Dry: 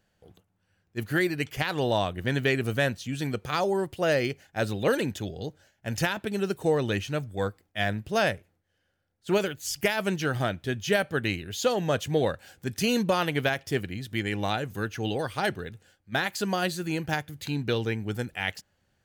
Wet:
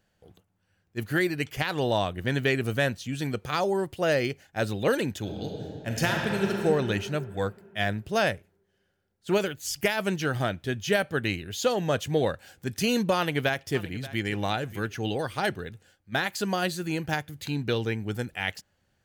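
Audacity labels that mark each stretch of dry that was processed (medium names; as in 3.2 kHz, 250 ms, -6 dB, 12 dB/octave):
5.190000	6.610000	reverb throw, RT60 2.7 s, DRR 0 dB
13.160000	14.280000	echo throw 580 ms, feedback 20%, level -17 dB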